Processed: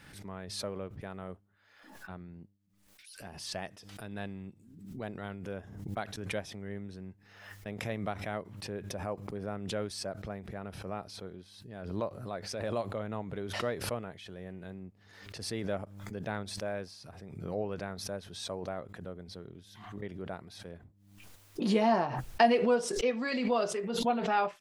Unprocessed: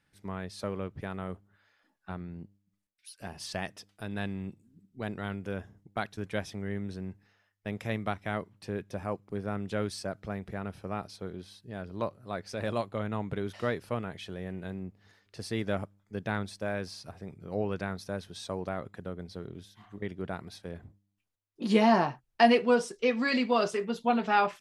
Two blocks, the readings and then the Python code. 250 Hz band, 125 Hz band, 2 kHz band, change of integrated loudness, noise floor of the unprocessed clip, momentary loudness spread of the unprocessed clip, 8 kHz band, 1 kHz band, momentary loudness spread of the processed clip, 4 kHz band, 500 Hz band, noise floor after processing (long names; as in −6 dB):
−4.0 dB, −3.5 dB, −4.5 dB, −2.5 dB, −76 dBFS, 17 LU, +4.0 dB, −3.0 dB, 19 LU, −1.0 dB, −2.0 dB, −63 dBFS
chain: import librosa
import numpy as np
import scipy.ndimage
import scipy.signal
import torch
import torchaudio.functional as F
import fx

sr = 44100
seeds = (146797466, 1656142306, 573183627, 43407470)

y = fx.dynamic_eq(x, sr, hz=590.0, q=1.3, threshold_db=-42.0, ratio=4.0, max_db=5)
y = fx.pre_swell(y, sr, db_per_s=54.0)
y = F.gain(torch.from_numpy(y), -6.5).numpy()